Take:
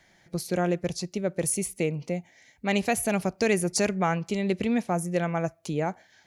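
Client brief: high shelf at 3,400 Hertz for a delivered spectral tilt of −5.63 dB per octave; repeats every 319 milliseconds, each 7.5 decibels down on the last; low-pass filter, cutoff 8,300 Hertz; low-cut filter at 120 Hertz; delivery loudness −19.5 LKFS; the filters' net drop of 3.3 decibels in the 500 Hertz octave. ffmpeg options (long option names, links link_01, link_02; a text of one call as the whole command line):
ffmpeg -i in.wav -af "highpass=120,lowpass=8300,equalizer=frequency=500:width_type=o:gain=-4,highshelf=frequency=3400:gain=-5.5,aecho=1:1:319|638|957|1276|1595:0.422|0.177|0.0744|0.0312|0.0131,volume=10dB" out.wav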